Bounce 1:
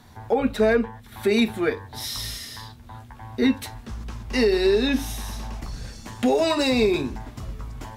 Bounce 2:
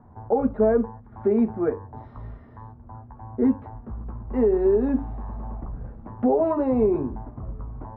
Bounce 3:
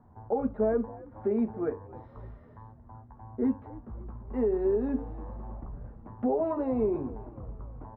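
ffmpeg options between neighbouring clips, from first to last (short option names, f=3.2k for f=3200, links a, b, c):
-af "lowpass=f=1.1k:w=0.5412,lowpass=f=1.1k:w=1.3066"
-filter_complex "[0:a]asplit=5[a][b][c][d][e];[b]adelay=275,afreqshift=49,volume=-20.5dB[f];[c]adelay=550,afreqshift=98,volume=-26.9dB[g];[d]adelay=825,afreqshift=147,volume=-33.3dB[h];[e]adelay=1100,afreqshift=196,volume=-39.6dB[i];[a][f][g][h][i]amix=inputs=5:normalize=0,volume=-7dB"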